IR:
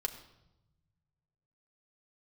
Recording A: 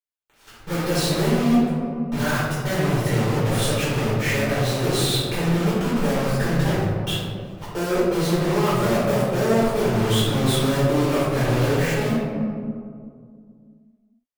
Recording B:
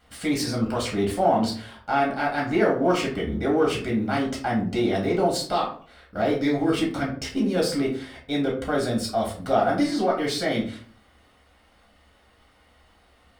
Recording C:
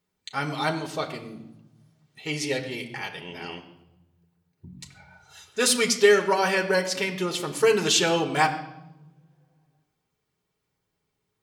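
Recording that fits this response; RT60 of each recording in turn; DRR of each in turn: C; 2.2, 0.45, 0.90 seconds; −11.0, −4.5, 3.0 decibels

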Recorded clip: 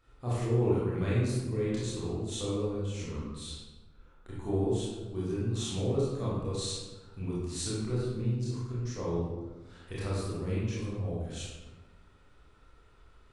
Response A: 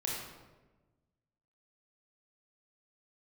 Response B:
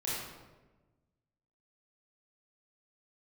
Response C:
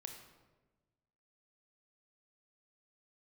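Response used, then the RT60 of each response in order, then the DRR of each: B; 1.2, 1.2, 1.2 seconds; −3.5, −8.0, 4.0 decibels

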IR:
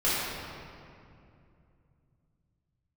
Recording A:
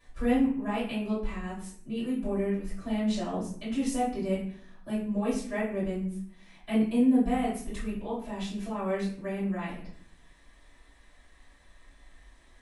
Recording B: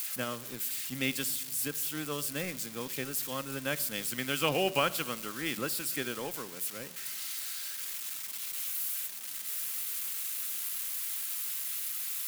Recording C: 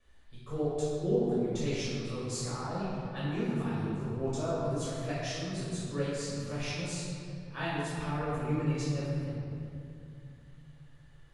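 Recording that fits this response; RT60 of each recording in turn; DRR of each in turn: C; 0.60, 1.3, 2.5 seconds; −11.0, 12.0, −10.0 decibels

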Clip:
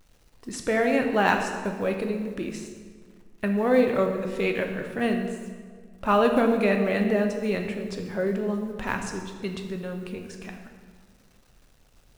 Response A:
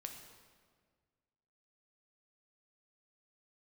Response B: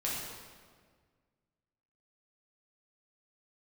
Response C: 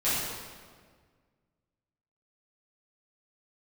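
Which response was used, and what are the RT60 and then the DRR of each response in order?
A; 1.7, 1.7, 1.7 seconds; 3.5, −6.5, −13.5 decibels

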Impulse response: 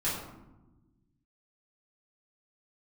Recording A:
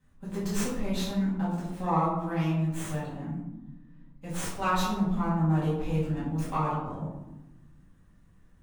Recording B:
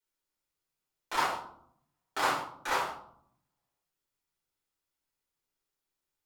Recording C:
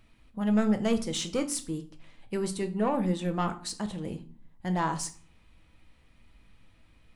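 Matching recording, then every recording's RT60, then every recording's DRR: A; 1.1, 0.65, 0.45 seconds; −10.5, −7.5, 6.5 decibels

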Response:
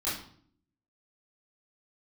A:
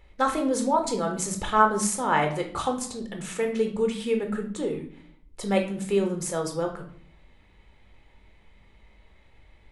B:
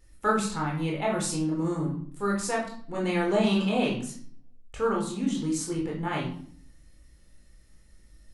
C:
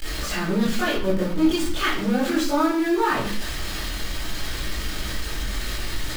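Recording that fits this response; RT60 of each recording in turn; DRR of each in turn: C; 0.60, 0.60, 0.55 seconds; 3.0, −2.5, −11.0 decibels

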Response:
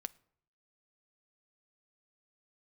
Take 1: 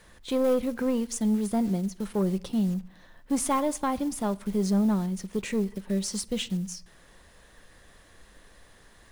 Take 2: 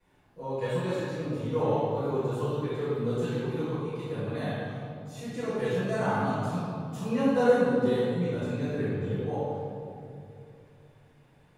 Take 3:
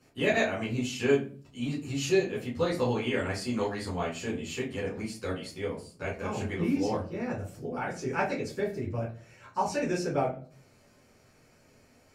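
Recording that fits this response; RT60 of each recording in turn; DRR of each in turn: 1; 0.65, 2.6, 0.40 seconds; 14.5, −14.0, −8.5 decibels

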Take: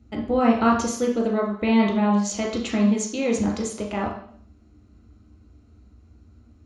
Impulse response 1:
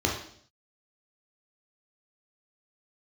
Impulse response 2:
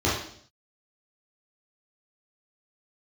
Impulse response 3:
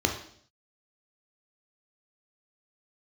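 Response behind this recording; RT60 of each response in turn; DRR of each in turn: 1; 0.60, 0.60, 0.60 seconds; −1.5, −8.0, 2.5 decibels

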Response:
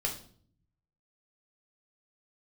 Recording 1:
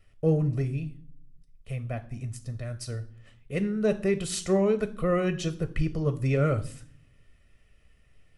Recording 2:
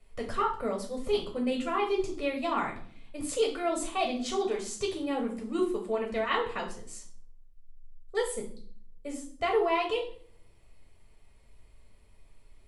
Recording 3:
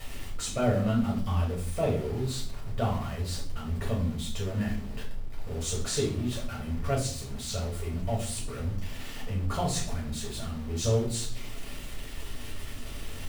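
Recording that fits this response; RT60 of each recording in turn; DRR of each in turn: 2; 0.55, 0.55, 0.50 seconds; 10.0, 0.0, −4.0 decibels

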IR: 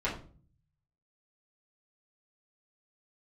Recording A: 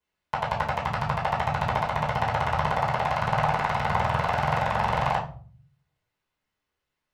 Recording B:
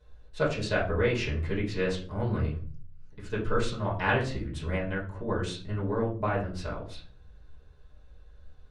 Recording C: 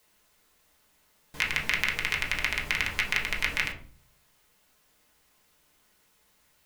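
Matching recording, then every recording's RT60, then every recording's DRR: B; 0.40, 0.40, 0.40 seconds; −17.0, −9.0, −2.5 decibels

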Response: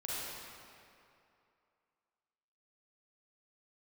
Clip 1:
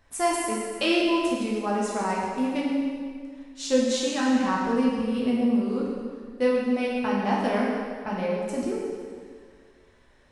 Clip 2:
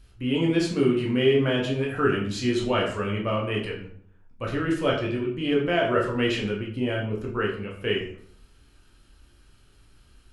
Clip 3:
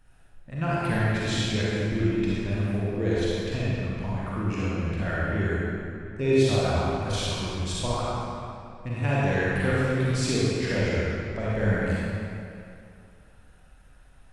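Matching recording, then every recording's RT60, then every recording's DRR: 3; 1.9, 0.55, 2.6 seconds; −5.0, −2.5, −8.0 decibels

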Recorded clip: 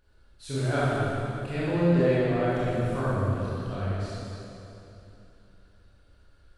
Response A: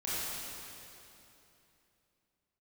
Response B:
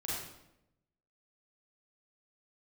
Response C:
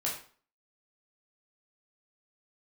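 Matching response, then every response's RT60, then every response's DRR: A; 3.0, 0.85, 0.45 seconds; −10.5, −7.5, −4.5 decibels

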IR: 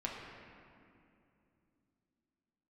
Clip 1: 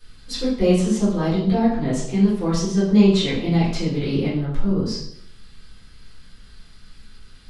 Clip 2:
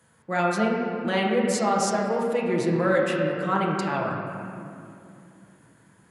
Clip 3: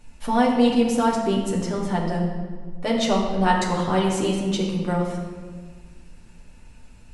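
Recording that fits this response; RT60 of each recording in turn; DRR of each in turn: 2; 0.70, 2.6, 1.6 seconds; −10.5, −3.5, −3.5 decibels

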